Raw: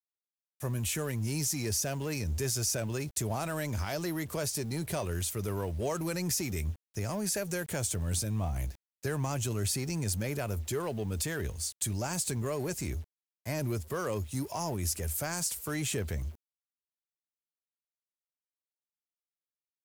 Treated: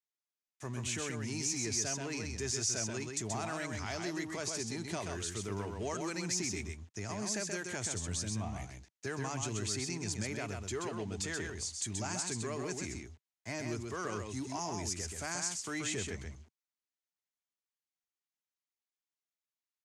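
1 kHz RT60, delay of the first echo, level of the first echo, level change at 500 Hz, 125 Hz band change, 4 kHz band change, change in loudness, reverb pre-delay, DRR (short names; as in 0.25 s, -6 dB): none, 0.13 s, -4.5 dB, -5.0 dB, -8.0 dB, -1.0 dB, -4.0 dB, none, none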